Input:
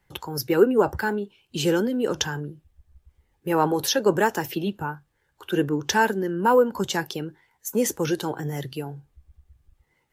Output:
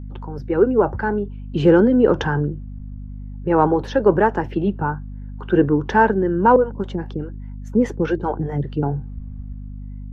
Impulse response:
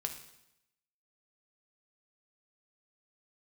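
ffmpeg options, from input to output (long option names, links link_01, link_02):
-filter_complex "[0:a]lowpass=1400,dynaudnorm=framelen=100:gausssize=13:maxgain=16.5dB,asettb=1/sr,asplit=3[link_01][link_02][link_03];[link_01]atrim=end=6.564[link_04];[link_02]atrim=start=6.56:end=8.83,asetpts=PTS-STARTPTS,afade=type=in:duration=0.004:curve=qsin,afade=type=out:start_time=2.266:duration=0.004:curve=qsin,acrossover=split=420[link_05][link_06];[link_05]aeval=exprs='val(0)*(1-1/2+1/2*cos(2*PI*4.9*n/s))':channel_layout=same[link_07];[link_06]aeval=exprs='val(0)*(1-1/2-1/2*cos(2*PI*4.9*n/s))':channel_layout=same[link_08];[link_07][link_08]amix=inputs=2:normalize=0[link_09];[link_03]atrim=start=8.826[link_10];[link_04][link_09]acrossfade=duration=0.004:curve1=hsin:curve2=qsin[link_11];[link_11][link_10]acrossfade=duration=0.004:curve1=qsin:curve2=hsin,aeval=exprs='0.944*(cos(1*acos(clip(val(0)/0.944,-1,1)))-cos(1*PI/2))+0.00668*(cos(5*acos(clip(val(0)/0.944,-1,1)))-cos(5*PI/2))':channel_layout=same,aeval=exprs='val(0)+0.0316*(sin(2*PI*50*n/s)+sin(2*PI*2*50*n/s)/2+sin(2*PI*3*50*n/s)/3+sin(2*PI*4*50*n/s)/4+sin(2*PI*5*50*n/s)/5)':channel_layout=same,volume=-1dB"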